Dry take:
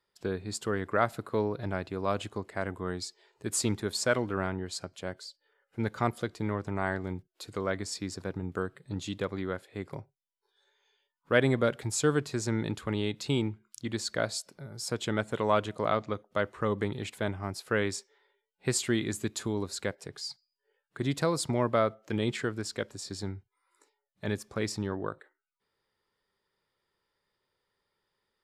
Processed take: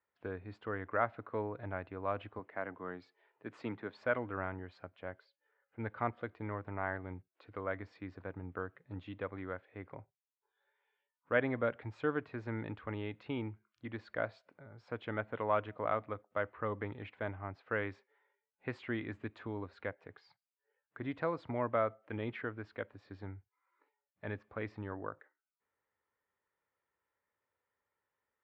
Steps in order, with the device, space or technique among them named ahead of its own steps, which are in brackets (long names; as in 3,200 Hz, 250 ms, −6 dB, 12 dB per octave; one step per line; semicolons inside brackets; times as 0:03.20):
0:02.39–0:03.98: high-pass filter 130 Hz 24 dB per octave
bass cabinet (loudspeaker in its box 69–2,400 Hz, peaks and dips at 140 Hz −10 dB, 200 Hz −8 dB, 380 Hz −7 dB)
level −5 dB